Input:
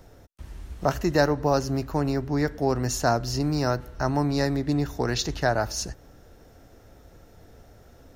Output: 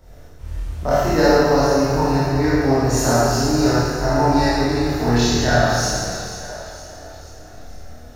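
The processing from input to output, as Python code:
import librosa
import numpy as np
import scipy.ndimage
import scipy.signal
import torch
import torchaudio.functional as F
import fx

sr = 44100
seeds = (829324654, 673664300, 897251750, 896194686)

y = fx.echo_split(x, sr, split_hz=420.0, low_ms=162, high_ms=476, feedback_pct=52, wet_db=-12.5)
y = fx.chorus_voices(y, sr, voices=4, hz=0.29, base_ms=24, depth_ms=1.5, mix_pct=50)
y = fx.rev_schroeder(y, sr, rt60_s=1.9, comb_ms=26, drr_db=-9.0)
y = y * librosa.db_to_amplitude(2.0)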